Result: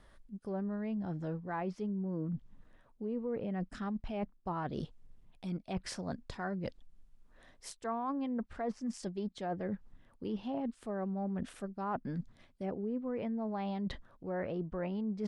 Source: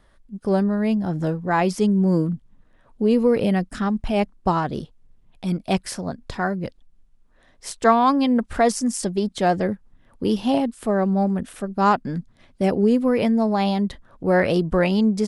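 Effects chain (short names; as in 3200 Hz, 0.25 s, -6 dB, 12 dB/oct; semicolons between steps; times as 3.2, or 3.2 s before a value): treble ducked by the level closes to 1500 Hz, closed at -14.5 dBFS; reverse; compressor 5:1, threshold -33 dBFS, peak gain reduction 19 dB; reverse; gain -3 dB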